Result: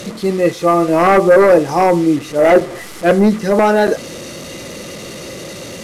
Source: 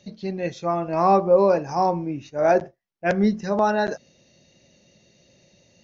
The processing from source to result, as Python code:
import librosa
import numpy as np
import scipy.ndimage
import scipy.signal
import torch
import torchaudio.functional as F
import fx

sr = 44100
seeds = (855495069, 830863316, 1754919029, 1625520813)

y = fx.delta_mod(x, sr, bps=64000, step_db=-34.5)
y = fx.fold_sine(y, sr, drive_db=7, ceiling_db=-6.5)
y = fx.small_body(y, sr, hz=(330.0, 470.0, 1200.0, 2000.0), ring_ms=25, db=8)
y = y * librosa.db_to_amplitude(-2.5)